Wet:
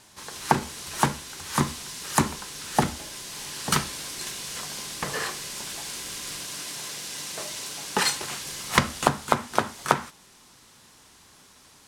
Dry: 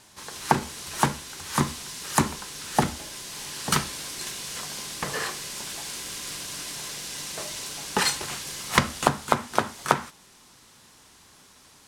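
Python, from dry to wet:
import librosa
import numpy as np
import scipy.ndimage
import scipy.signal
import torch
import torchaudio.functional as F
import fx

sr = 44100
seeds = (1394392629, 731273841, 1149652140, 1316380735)

y = fx.highpass(x, sr, hz=120.0, slope=6, at=(6.44, 8.42))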